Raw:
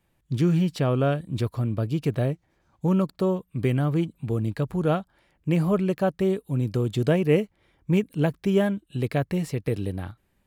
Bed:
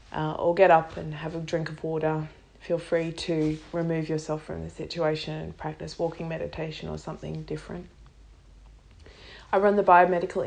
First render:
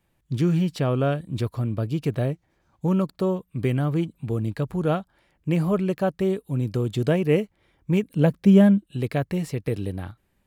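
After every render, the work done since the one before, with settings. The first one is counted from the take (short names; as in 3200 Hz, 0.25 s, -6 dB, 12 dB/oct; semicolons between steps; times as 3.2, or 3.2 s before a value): 8.16–8.87 small resonant body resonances 200/520 Hz, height 10 dB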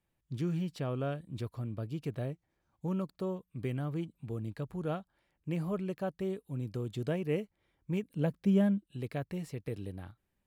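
gain -12 dB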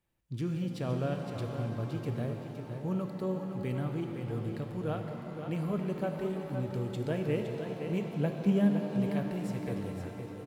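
echo 0.514 s -7.5 dB; shimmer reverb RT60 3.7 s, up +7 st, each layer -8 dB, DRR 4 dB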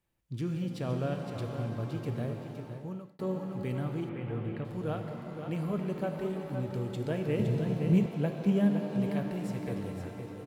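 2.6–3.19 fade out; 4.09–4.65 resonant high shelf 3800 Hz -13 dB, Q 1.5; 7.39–8.06 tone controls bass +13 dB, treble +3 dB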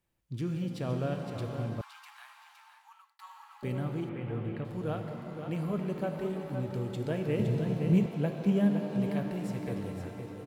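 1.81–3.63 steep high-pass 850 Hz 72 dB/oct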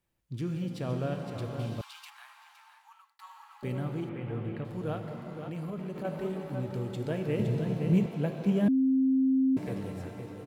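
1.59–2.1 resonant high shelf 2300 Hz +6 dB, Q 1.5; 4.97–6.05 compressor, threshold -33 dBFS; 8.68–9.57 bleep 264 Hz -21.5 dBFS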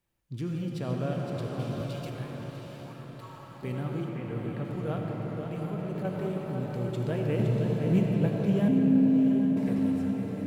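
diffused feedback echo 0.754 s, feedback 44%, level -6.5 dB; digital reverb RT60 3.7 s, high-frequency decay 0.25×, pre-delay 40 ms, DRR 4.5 dB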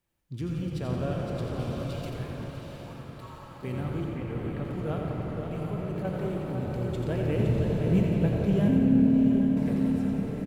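frequency-shifting echo 87 ms, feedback 54%, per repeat -37 Hz, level -7 dB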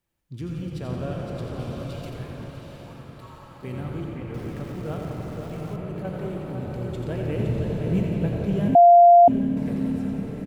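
4.34–5.76 sample gate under -43.5 dBFS; 8.75–9.28 bleep 695 Hz -8 dBFS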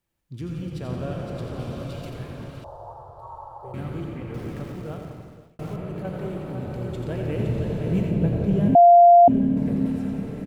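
2.64–3.74 EQ curve 100 Hz 0 dB, 240 Hz -30 dB, 360 Hz -7 dB, 870 Hz +14 dB, 2200 Hz -28 dB, 3300 Hz -20 dB, 5200 Hz -14 dB; 4.61–5.59 fade out; 8.11–9.86 tilt shelf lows +3.5 dB, about 740 Hz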